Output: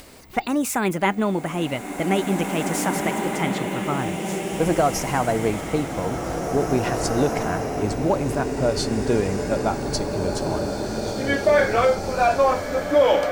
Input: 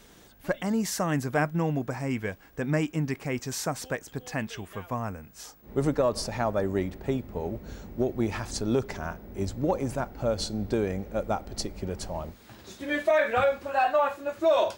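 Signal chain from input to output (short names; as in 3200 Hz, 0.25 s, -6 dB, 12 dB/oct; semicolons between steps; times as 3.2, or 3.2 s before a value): speed glide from 133% -> 89%; upward compressor, threshold -45 dBFS; bloom reverb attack 2.35 s, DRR 2 dB; gain +5 dB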